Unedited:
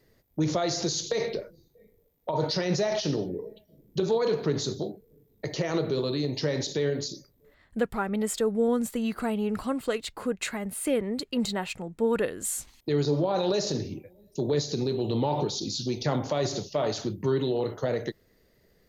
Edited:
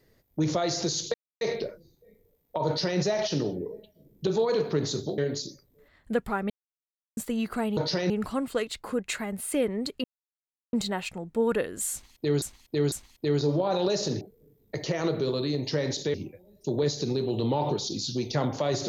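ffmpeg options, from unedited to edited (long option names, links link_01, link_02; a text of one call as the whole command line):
ffmpeg -i in.wav -filter_complex "[0:a]asplit=12[link_01][link_02][link_03][link_04][link_05][link_06][link_07][link_08][link_09][link_10][link_11][link_12];[link_01]atrim=end=1.14,asetpts=PTS-STARTPTS,afade=type=out:start_time=1.136:duration=0.004:curve=hsin,apad=pad_dur=0.27[link_13];[link_02]atrim=start=1.14:end=4.912,asetpts=PTS-STARTPTS,afade=type=in:duration=0.004:curve=hsin[link_14];[link_03]atrim=start=6.838:end=8.16,asetpts=PTS-STARTPTS,afade=type=out:start_time=1.318:duration=0.004:curve=hsin[link_15];[link_04]atrim=start=8.16:end=8.83,asetpts=PTS-STARTPTS,volume=0[link_16];[link_05]atrim=start=8.83:end=9.432,asetpts=PTS-STARTPTS,afade=type=in:duration=0.004:curve=hsin[link_17];[link_06]atrim=start=2.398:end=2.732[link_18];[link_07]atrim=start=9.428:end=11.37,asetpts=PTS-STARTPTS,afade=type=out:start_time=1.938:duration=0.004:curve=hsin,apad=pad_dur=0.69[link_19];[link_08]atrim=start=11.37:end=13.062,asetpts=PTS-STARTPTS,afade=type=in:duration=0.004:curve=hsin[link_20];[link_09]atrim=start=12.558:end=13.062[link_21];[link_10]atrim=start=12.558:end=13.852[link_22];[link_11]atrim=start=4.908:end=6.842[link_23];[link_12]atrim=start=13.848[link_24];[link_13][link_14]concat=n=2:v=0:a=1[link_25];[link_15][link_16][link_17]concat=n=3:v=0:a=1[link_26];[link_25][link_26]acrossfade=duration=0.004:curve1=hsin:curve2=hsin[link_27];[link_27][link_18]acrossfade=duration=0.004:curve1=hsin:curve2=hsin[link_28];[link_19][link_20]concat=n=2:v=0:a=1[link_29];[link_28][link_29]acrossfade=duration=0.004:curve1=hsin:curve2=hsin[link_30];[link_30][link_21]acrossfade=duration=0.004:curve1=hsin:curve2=hsin[link_31];[link_31][link_22]acrossfade=duration=0.004:curve1=hsin:curve2=hsin[link_32];[link_32][link_23]acrossfade=duration=0.004:curve1=hsin:curve2=hsin[link_33];[link_33][link_24]acrossfade=duration=0.004:curve1=hsin:curve2=hsin" out.wav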